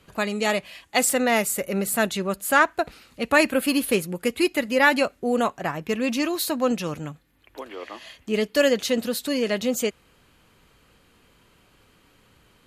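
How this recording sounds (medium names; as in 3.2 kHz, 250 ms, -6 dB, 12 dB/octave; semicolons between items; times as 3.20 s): noise floor -60 dBFS; spectral tilt -3.0 dB/octave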